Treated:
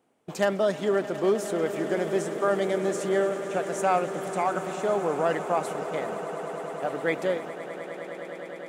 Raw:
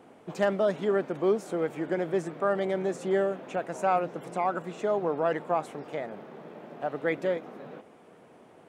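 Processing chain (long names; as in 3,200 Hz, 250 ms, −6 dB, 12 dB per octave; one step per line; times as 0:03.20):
noise gate −41 dBFS, range −18 dB
high-shelf EQ 4,300 Hz +11.5 dB
on a send: echo that builds up and dies away 103 ms, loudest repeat 8, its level −17 dB
on the sum: level +1 dB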